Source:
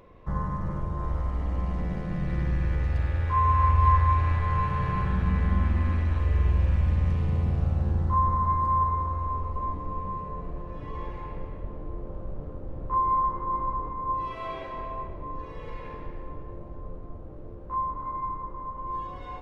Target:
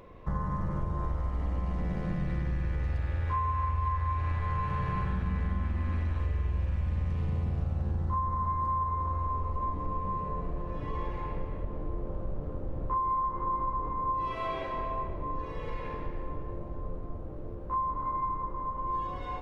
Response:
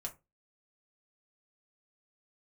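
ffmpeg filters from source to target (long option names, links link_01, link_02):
-af "acompressor=threshold=-29dB:ratio=6,volume=2dB"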